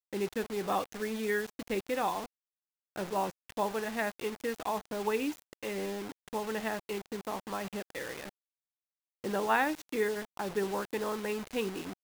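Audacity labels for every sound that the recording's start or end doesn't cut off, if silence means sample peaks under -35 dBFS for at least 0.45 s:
2.960000	8.240000	sound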